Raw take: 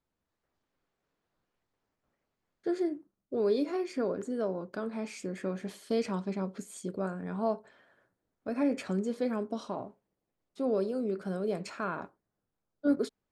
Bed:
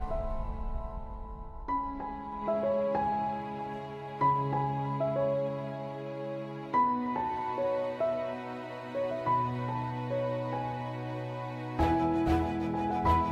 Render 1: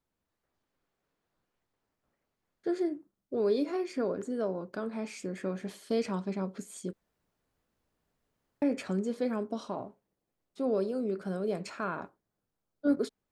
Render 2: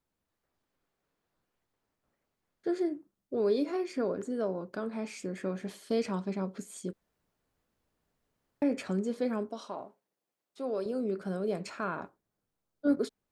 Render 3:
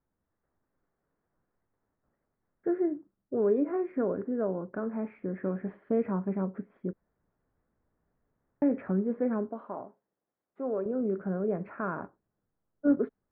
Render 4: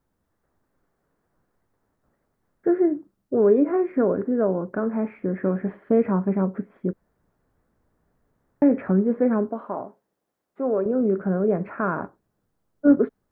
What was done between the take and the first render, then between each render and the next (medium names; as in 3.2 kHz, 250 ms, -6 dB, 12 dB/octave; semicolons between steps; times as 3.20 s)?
6.93–8.62 s: room tone
9.49–10.86 s: high-pass 550 Hz 6 dB/octave
steep low-pass 1.9 kHz 36 dB/octave; bass shelf 360 Hz +4.5 dB
trim +8.5 dB